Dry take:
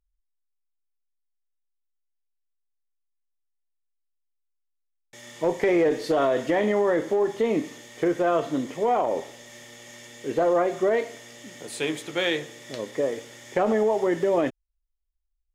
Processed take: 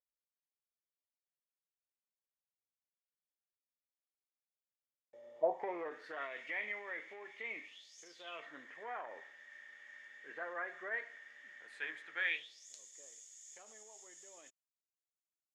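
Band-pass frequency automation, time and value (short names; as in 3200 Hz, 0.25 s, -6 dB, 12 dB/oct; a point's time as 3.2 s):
band-pass, Q 6.8
5.32 s 550 Hz
6.32 s 2200 Hz
7.64 s 2200 Hz
8.01 s 6600 Hz
8.5 s 1700 Hz
12.22 s 1700 Hz
12.68 s 7000 Hz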